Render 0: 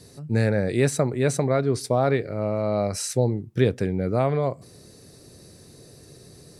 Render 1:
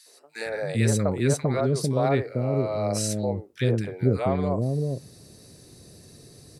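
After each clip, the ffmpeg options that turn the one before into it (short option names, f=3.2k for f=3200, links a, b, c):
-filter_complex "[0:a]acrossover=split=460|1400[a][b][c];[b]adelay=60[d];[a]adelay=450[e];[e][d][c]amix=inputs=3:normalize=0"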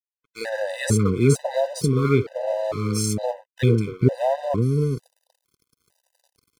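-af "aeval=exprs='sgn(val(0))*max(abs(val(0))-0.00794,0)':c=same,afftfilt=real='re*gt(sin(2*PI*1.1*pts/sr)*(1-2*mod(floor(b*sr/1024/510),2)),0)':imag='im*gt(sin(2*PI*1.1*pts/sr)*(1-2*mod(floor(b*sr/1024/510),2)),0)':win_size=1024:overlap=0.75,volume=6.5dB"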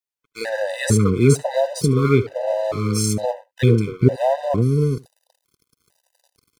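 -af "aecho=1:1:74:0.075,volume=3dB"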